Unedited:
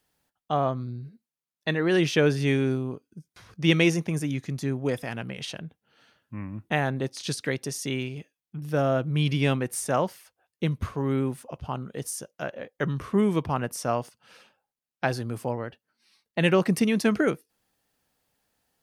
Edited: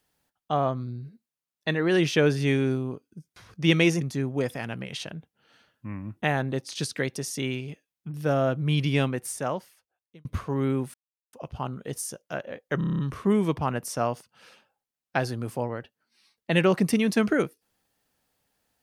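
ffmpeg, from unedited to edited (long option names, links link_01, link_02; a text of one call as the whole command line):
ffmpeg -i in.wav -filter_complex "[0:a]asplit=11[link_01][link_02][link_03][link_04][link_05][link_06][link_07][link_08][link_09][link_10][link_11];[link_01]atrim=end=4.012[link_12];[link_02]atrim=start=4.488:end=10.73,asetpts=PTS-STARTPTS,afade=type=out:start_time=4.932:duration=1.31[link_13];[link_03]atrim=start=10.73:end=11.42,asetpts=PTS-STARTPTS,afade=type=in:duration=0.004:curve=hsin,afade=type=out:start_time=0.686:duration=0.004:curve=hsin,apad=pad_dur=0.39[link_14];[link_04]atrim=start=11.42:end=12.902,asetpts=PTS-STARTPTS,afade=type=in:duration=0.004:curve=hsin[link_15];[link_05]atrim=start=12.868:end=12.902[link_16];[link_06]atrim=start=12.868:end=12.902[link_17];[link_07]atrim=start=12.868:end=12.902[link_18];[link_08]atrim=start=12.868:end=12.902[link_19];[link_09]atrim=start=12.868:end=12.902[link_20];[link_10]atrim=start=12.868:end=12.902[link_21];[link_11]atrim=start=12.868[link_22];[link_13][link_14][link_15]concat=n=3:v=0:a=1[link_23];[link_12][link_23]acrossfade=duration=0.004:curve1=hsin:curve2=hsin[link_24];[link_24][link_16]acrossfade=duration=0.004:curve1=hsin:curve2=hsin[link_25];[link_25][link_17]acrossfade=duration=0.004:curve1=hsin:curve2=hsin[link_26];[link_26][link_18]acrossfade=duration=0.004:curve1=hsin:curve2=hsin[link_27];[link_27][link_19]acrossfade=duration=0.004:curve1=hsin:curve2=hsin[link_28];[link_28][link_20]acrossfade=duration=0.004:curve1=hsin:curve2=hsin[link_29];[link_29][link_21]acrossfade=duration=0.004:curve1=hsin:curve2=hsin[link_30];[link_30][link_22]acrossfade=duration=0.004:curve1=hsin:curve2=hsin" out.wav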